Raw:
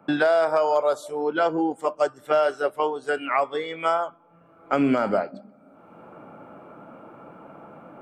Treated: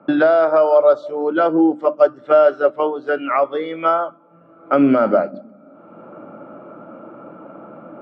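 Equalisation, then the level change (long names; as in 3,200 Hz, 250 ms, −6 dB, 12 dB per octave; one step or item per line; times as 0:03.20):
loudspeaker in its box 120–4,500 Hz, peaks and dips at 220 Hz +4 dB, 320 Hz +7 dB, 580 Hz +9 dB, 1,300 Hz +8 dB
low-shelf EQ 380 Hz +7.5 dB
mains-hum notches 50/100/150/200/250/300 Hz
−1.0 dB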